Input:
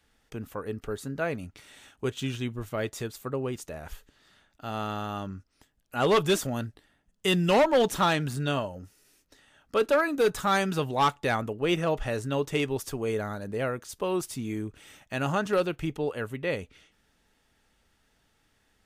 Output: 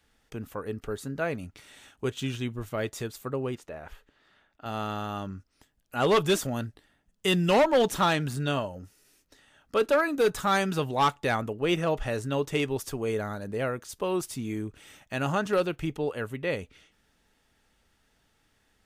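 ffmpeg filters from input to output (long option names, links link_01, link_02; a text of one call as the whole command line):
ffmpeg -i in.wav -filter_complex "[0:a]asettb=1/sr,asplit=3[link_01][link_02][link_03];[link_01]atrim=end=3.554[link_04];[link_02]atrim=start=3.55:end=4.66,asetpts=PTS-STARTPTS,afade=type=in:duration=0.004:curve=qsin,afade=type=out:start_time=1.106:duration=0.004:curve=qsin,bass=frequency=250:gain=-6,treble=frequency=4000:gain=-13[link_05];[link_03]atrim=start=4.656[link_06];[link_04][link_05]acrossfade=duration=0.004:curve1=hsin:curve2=qsin[link_07];[link_07][link_06]acrossfade=duration=0.004:curve1=qsin:curve2=hsin" out.wav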